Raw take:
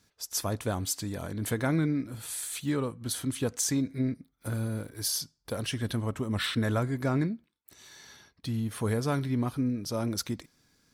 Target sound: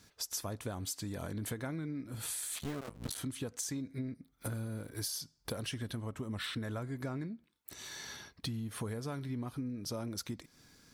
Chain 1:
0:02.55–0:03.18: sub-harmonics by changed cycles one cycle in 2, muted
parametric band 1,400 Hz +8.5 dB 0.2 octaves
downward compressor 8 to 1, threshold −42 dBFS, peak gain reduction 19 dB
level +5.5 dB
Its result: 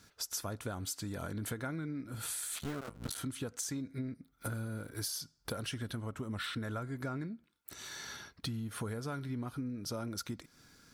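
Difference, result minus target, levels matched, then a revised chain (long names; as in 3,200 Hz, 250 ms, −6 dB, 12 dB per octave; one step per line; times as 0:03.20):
1,000 Hz band +2.5 dB
0:02.55–0:03.18: sub-harmonics by changed cycles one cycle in 2, muted
downward compressor 8 to 1, threshold −42 dBFS, peak gain reduction 19 dB
level +5.5 dB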